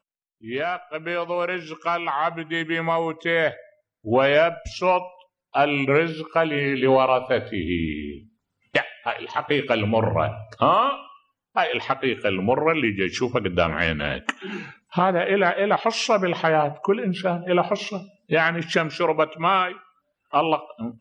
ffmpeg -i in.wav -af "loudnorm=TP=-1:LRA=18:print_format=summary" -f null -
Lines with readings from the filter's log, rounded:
Input Integrated:    -22.8 LUFS
Input True Peak:      -5.8 dBTP
Input LRA:             2.8 LU
Input Threshold:     -33.3 LUFS